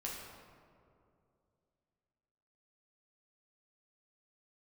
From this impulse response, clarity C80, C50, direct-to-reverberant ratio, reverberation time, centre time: 3.0 dB, 1.0 dB, −4.5 dB, 2.5 s, 89 ms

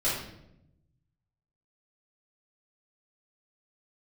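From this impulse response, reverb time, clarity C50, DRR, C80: 0.80 s, 2.0 dB, −10.5 dB, 5.5 dB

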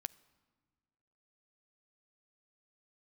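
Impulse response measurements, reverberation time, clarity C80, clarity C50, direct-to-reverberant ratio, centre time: 1.7 s, 22.5 dB, 21.0 dB, 16.0 dB, 2 ms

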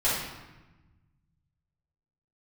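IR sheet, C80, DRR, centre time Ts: 3.5 dB, −11.0 dB, 71 ms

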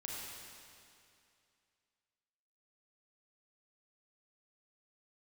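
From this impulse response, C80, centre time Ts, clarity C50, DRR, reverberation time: −1.0 dB, 150 ms, −2.5 dB, −4.0 dB, 2.5 s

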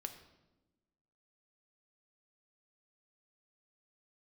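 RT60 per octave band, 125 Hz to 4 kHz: 1.4, 1.5, 1.2, 0.95, 0.80, 0.75 seconds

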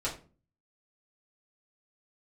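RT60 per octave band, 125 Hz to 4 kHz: 0.60, 0.55, 0.40, 0.35, 0.30, 0.25 seconds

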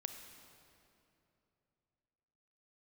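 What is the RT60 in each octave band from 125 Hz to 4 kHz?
3.6, 3.2, 3.1, 2.7, 2.3, 2.0 seconds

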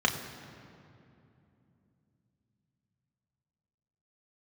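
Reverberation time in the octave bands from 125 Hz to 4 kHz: 4.8, 4.4, 3.0, 2.5, 2.2, 1.6 seconds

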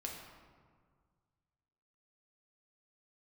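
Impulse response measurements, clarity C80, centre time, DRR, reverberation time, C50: 4.5 dB, 62 ms, −1.0 dB, 1.8 s, 2.5 dB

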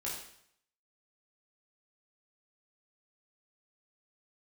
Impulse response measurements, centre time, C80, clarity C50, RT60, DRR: 46 ms, 6.0 dB, 3.0 dB, 0.65 s, −6.0 dB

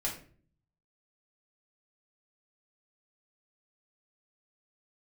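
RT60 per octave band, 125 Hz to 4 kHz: 0.95, 0.75, 0.55, 0.35, 0.40, 0.30 seconds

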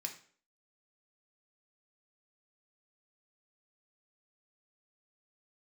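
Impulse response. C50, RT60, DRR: 10.5 dB, 0.50 s, 2.5 dB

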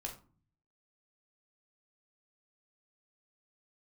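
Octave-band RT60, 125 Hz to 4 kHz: 0.90, 0.70, 0.40, 0.40, 0.25, 0.25 seconds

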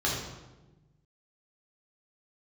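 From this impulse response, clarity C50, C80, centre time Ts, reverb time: 1.5 dB, 4.5 dB, 58 ms, 1.1 s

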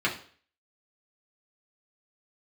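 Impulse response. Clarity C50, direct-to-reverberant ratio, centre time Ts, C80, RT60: 10.5 dB, −5.0 dB, 18 ms, 15.0 dB, 0.45 s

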